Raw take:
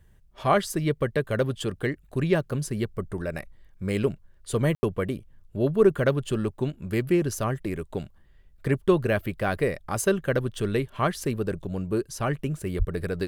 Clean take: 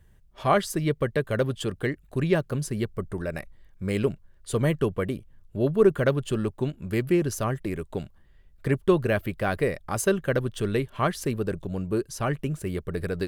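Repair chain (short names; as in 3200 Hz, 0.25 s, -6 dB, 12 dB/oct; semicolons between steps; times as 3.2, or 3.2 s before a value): 12.78–12.9 HPF 140 Hz 24 dB/oct; room tone fill 4.75–4.83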